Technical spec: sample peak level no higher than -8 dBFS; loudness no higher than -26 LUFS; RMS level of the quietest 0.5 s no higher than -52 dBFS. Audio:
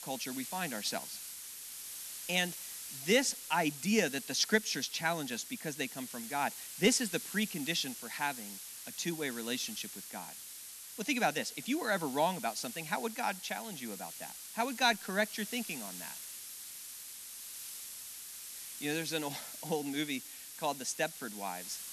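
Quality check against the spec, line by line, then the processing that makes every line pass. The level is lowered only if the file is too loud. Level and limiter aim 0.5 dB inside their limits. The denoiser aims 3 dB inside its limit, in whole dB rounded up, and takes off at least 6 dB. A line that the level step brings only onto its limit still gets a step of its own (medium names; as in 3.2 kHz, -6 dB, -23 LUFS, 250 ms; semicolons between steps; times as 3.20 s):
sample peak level -13.0 dBFS: pass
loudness -35.5 LUFS: pass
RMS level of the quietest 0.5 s -48 dBFS: fail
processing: noise reduction 7 dB, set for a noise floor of -48 dBFS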